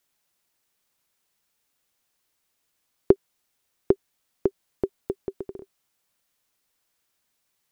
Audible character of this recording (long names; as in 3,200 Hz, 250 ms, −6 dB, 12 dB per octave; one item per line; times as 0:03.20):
background noise floor −76 dBFS
spectral slope −4.0 dB per octave